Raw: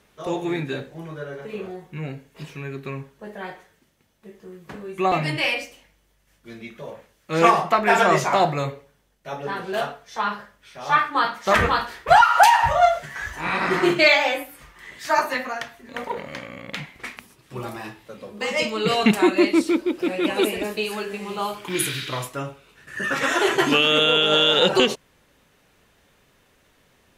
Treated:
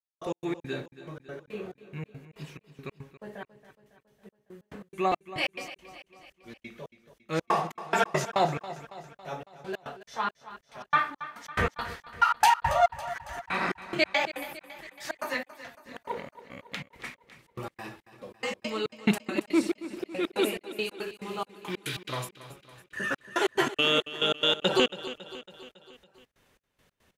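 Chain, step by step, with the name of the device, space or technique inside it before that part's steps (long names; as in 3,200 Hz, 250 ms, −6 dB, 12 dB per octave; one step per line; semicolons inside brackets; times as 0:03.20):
trance gate with a delay (gate pattern "..x.x.xx" 140 BPM −60 dB; repeating echo 277 ms, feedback 56%, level −15 dB)
level −5.5 dB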